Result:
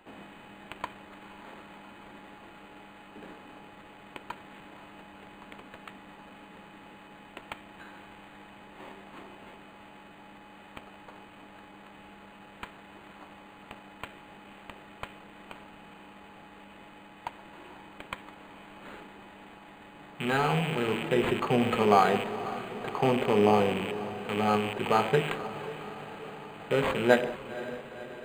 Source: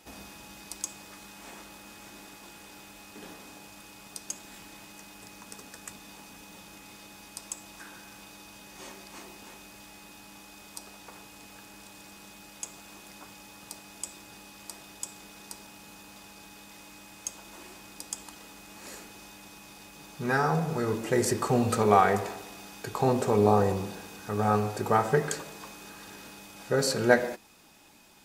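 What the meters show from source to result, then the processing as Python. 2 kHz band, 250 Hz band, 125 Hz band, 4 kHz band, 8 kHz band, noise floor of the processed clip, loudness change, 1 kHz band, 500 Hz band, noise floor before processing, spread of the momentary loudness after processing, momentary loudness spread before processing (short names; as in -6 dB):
+0.5 dB, 0.0 dB, -3.0 dB, +1.5 dB, -15.0 dB, -51 dBFS, 0.0 dB, -0.5 dB, 0.0 dB, -50 dBFS, 23 LU, 23 LU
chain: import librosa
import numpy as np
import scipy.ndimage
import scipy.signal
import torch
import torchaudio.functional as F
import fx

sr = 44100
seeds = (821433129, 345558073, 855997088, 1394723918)

y = fx.rattle_buzz(x, sr, strikes_db=-39.0, level_db=-20.0)
y = scipy.signal.sosfilt(scipy.signal.butter(4, 130.0, 'highpass', fs=sr, output='sos'), y)
y = fx.echo_diffused(y, sr, ms=515, feedback_pct=64, wet_db=-14.0)
y = np.interp(np.arange(len(y)), np.arange(len(y))[::8], y[::8])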